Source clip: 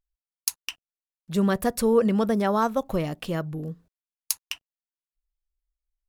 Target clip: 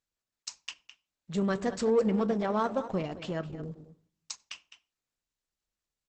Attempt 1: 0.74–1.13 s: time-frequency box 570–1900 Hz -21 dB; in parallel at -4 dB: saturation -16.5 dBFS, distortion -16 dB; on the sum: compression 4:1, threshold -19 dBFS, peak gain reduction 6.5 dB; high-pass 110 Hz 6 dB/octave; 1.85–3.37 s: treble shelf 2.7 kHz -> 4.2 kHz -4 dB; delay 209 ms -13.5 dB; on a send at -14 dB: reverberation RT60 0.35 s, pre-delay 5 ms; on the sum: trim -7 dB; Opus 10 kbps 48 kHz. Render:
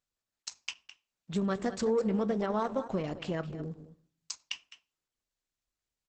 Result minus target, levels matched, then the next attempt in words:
compression: peak gain reduction +6.5 dB; saturation: distortion -9 dB
0.74–1.13 s: time-frequency box 570–1900 Hz -21 dB; in parallel at -4 dB: saturation -26 dBFS, distortion -7 dB; on the sum: high-pass 110 Hz 6 dB/octave; 1.85–3.37 s: treble shelf 2.7 kHz -> 4.2 kHz -4 dB; delay 209 ms -13.5 dB; on a send at -14 dB: reverberation RT60 0.35 s, pre-delay 5 ms; on the sum: trim -7 dB; Opus 10 kbps 48 kHz

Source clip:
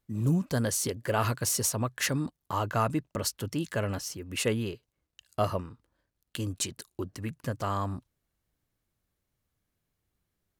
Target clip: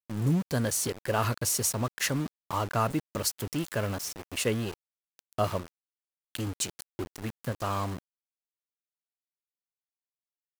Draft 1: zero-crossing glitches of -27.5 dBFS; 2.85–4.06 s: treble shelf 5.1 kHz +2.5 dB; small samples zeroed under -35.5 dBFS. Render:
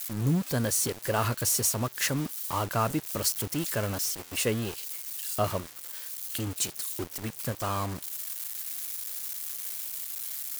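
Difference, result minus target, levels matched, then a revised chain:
zero-crossing glitches: distortion +11 dB
zero-crossing glitches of -39 dBFS; 2.85–4.06 s: treble shelf 5.1 kHz +2.5 dB; small samples zeroed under -35.5 dBFS

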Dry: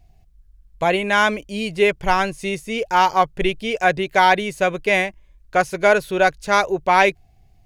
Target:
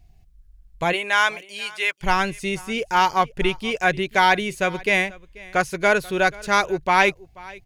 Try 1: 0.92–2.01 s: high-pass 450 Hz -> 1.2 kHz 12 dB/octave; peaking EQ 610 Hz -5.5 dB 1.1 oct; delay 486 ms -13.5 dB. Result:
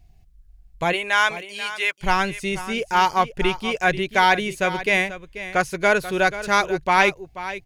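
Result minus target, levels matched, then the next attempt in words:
echo-to-direct +8.5 dB
0.92–2.01 s: high-pass 450 Hz -> 1.2 kHz 12 dB/octave; peaking EQ 610 Hz -5.5 dB 1.1 oct; delay 486 ms -22 dB

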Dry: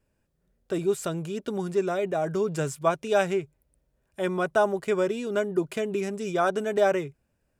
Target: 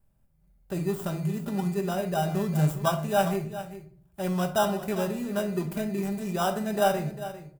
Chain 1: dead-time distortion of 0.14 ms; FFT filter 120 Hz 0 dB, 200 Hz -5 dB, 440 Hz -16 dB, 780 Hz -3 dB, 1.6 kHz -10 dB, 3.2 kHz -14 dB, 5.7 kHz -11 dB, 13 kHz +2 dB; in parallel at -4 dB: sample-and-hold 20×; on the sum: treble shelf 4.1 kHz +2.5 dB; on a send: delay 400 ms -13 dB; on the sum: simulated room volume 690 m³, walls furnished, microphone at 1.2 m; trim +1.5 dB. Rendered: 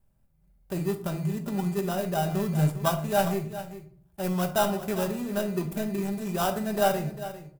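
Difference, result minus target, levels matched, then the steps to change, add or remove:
dead-time distortion: distortion +10 dB
change: dead-time distortion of 0.046 ms

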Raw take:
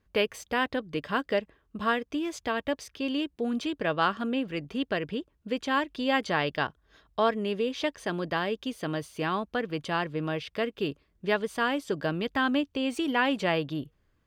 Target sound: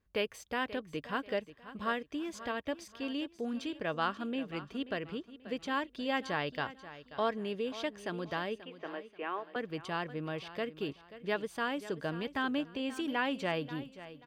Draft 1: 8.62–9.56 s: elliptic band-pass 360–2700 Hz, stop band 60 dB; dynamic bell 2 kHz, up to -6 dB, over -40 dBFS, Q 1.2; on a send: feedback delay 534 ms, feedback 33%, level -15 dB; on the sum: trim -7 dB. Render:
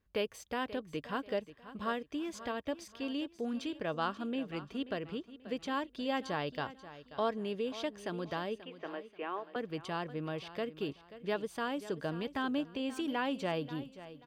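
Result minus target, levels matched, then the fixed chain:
2 kHz band -3.5 dB
8.62–9.56 s: elliptic band-pass 360–2700 Hz, stop band 60 dB; on a send: feedback delay 534 ms, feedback 33%, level -15 dB; on the sum: trim -7 dB

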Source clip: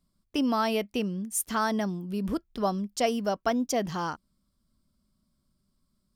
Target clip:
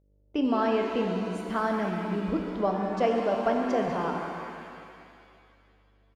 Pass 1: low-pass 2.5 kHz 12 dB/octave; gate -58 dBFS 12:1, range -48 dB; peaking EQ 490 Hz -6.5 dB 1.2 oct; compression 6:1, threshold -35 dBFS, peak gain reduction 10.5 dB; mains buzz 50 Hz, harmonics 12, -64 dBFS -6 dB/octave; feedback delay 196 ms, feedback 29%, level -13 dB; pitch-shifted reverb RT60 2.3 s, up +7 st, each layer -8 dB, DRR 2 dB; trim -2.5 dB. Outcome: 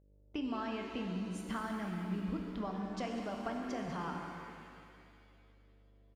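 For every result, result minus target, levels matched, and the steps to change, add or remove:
compression: peak gain reduction +10.5 dB; 500 Hz band -5.0 dB
remove: compression 6:1, threshold -35 dBFS, peak gain reduction 10.5 dB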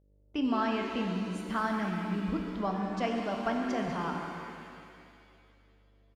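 500 Hz band -4.5 dB
change: peaking EQ 490 Hz +4.5 dB 1.2 oct

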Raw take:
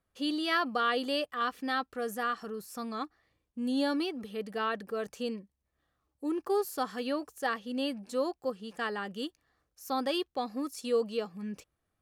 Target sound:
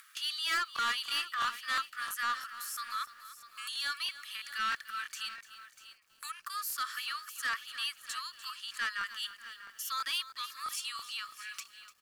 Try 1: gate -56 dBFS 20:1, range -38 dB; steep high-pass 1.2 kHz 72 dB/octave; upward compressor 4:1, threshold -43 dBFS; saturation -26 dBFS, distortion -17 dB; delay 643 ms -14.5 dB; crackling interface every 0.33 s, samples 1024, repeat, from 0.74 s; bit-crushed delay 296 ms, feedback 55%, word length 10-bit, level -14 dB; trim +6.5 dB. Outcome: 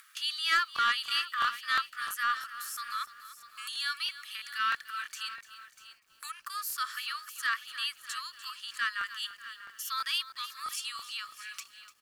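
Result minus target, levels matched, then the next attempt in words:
saturation: distortion -9 dB
gate -56 dBFS 20:1, range -38 dB; steep high-pass 1.2 kHz 72 dB/octave; upward compressor 4:1, threshold -43 dBFS; saturation -34.5 dBFS, distortion -8 dB; delay 643 ms -14.5 dB; crackling interface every 0.33 s, samples 1024, repeat, from 0.74 s; bit-crushed delay 296 ms, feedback 55%, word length 10-bit, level -14 dB; trim +6.5 dB

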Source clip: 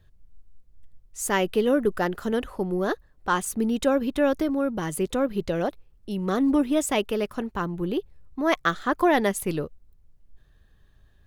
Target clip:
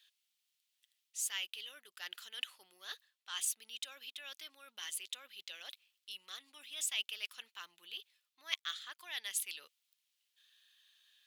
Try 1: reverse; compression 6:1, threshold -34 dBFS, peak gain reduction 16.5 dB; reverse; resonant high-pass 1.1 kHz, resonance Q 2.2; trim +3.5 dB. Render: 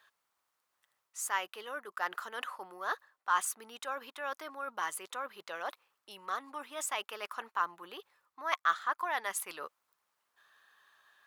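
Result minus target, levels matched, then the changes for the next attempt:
1 kHz band +17.5 dB
change: resonant high-pass 3.1 kHz, resonance Q 2.2

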